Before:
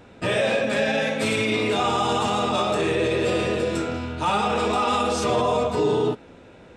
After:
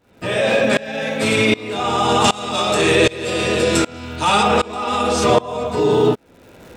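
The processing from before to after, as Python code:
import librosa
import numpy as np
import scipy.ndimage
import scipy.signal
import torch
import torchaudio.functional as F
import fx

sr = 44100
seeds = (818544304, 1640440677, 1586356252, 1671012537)

y = fx.high_shelf(x, sr, hz=2400.0, db=9.0, at=(2.24, 4.43))
y = fx.dmg_crackle(y, sr, seeds[0], per_s=310.0, level_db=-42.0)
y = fx.tremolo_shape(y, sr, shape='saw_up', hz=1.3, depth_pct=95)
y = F.gain(torch.from_numpy(y), 9.0).numpy()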